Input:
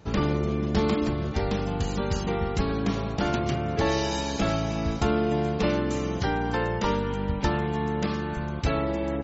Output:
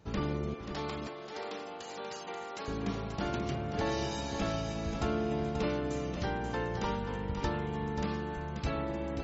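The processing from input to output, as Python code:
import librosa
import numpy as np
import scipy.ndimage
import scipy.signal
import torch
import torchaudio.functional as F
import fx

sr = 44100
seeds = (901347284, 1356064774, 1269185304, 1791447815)

p1 = fx.highpass(x, sr, hz=500.0, slope=12, at=(0.54, 2.68))
p2 = p1 + fx.echo_single(p1, sr, ms=534, db=-7.5, dry=0)
y = F.gain(torch.from_numpy(p2), -8.5).numpy()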